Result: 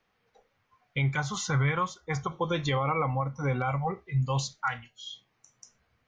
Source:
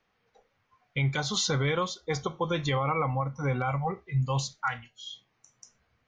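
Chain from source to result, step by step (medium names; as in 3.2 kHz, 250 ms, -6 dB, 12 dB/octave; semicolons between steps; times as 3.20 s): 1.13–2.32 s: ten-band graphic EQ 125 Hz +5 dB, 250 Hz -5 dB, 500 Hz -6 dB, 1 kHz +4 dB, 2 kHz +4 dB, 4 kHz -12 dB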